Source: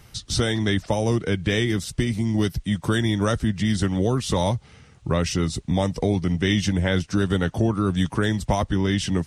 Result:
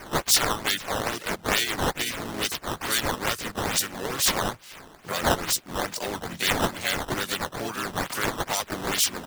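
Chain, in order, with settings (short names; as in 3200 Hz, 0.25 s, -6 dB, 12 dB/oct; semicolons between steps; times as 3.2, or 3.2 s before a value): differentiator; in parallel at +2 dB: compressor 16:1, threshold -46 dBFS, peak gain reduction 21 dB; on the sum: harmoniser -4 st -10 dB, +4 st -3 dB, +12 st -12 dB; decimation with a swept rate 11×, swing 160% 2.3 Hz; gain +8 dB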